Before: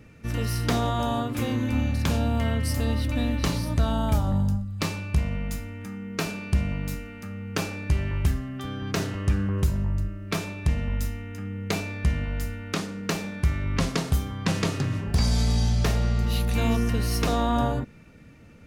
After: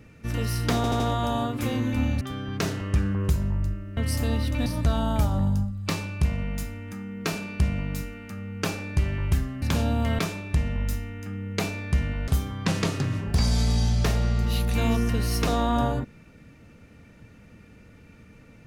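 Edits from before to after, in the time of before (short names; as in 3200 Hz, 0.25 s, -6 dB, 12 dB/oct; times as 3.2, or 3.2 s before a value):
0.76 stutter 0.08 s, 4 plays
1.97–2.54 swap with 8.55–10.31
3.23–3.59 cut
12.4–14.08 cut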